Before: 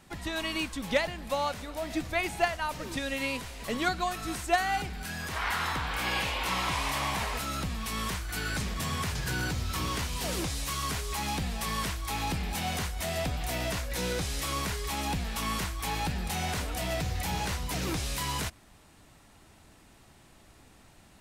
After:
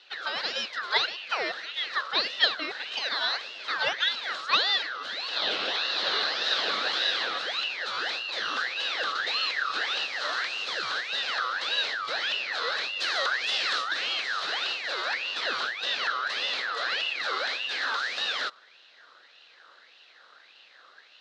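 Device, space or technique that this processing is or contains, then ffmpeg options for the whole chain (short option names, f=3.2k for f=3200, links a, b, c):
voice changer toy: -filter_complex "[0:a]aeval=exprs='val(0)*sin(2*PI*2000*n/s+2000*0.4/1.7*sin(2*PI*1.7*n/s))':c=same,highpass=490,equalizer=f=510:t=q:w=4:g=4,equalizer=f=950:t=q:w=4:g=-5,equalizer=f=1.6k:t=q:w=4:g=3,equalizer=f=2.3k:t=q:w=4:g=-8,equalizer=f=4k:t=q:w=4:g=9,lowpass=f=4.6k:w=0.5412,lowpass=f=4.6k:w=1.3066,asettb=1/sr,asplit=3[a][b][c];[a]atrim=end=13.004[d];[b]atrim=start=13:end=13.94,asetpts=PTS-STARTPTS,afade=t=in:d=0.004:c=qsin,afade=t=out:st=0.936:d=0.004:c=qsin,aemphasis=mode=production:type=50kf[e];[c]atrim=start=13.936[f];[d][e]acrossfade=d=0.004:c1=hsin:c2=qsin[g];[g][f]acrossfade=d=0.004:c1=qsin:c2=hsin,volume=5.5dB"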